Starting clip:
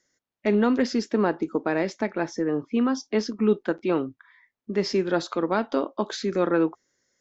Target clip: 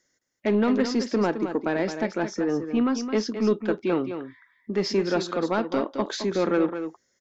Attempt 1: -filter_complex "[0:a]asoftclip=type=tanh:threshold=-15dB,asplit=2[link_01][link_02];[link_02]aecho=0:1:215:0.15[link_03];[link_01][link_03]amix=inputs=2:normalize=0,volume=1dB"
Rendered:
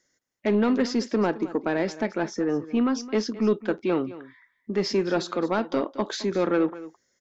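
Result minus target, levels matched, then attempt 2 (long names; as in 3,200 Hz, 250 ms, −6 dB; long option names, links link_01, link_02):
echo-to-direct −7.5 dB
-filter_complex "[0:a]asoftclip=type=tanh:threshold=-15dB,asplit=2[link_01][link_02];[link_02]aecho=0:1:215:0.355[link_03];[link_01][link_03]amix=inputs=2:normalize=0,volume=1dB"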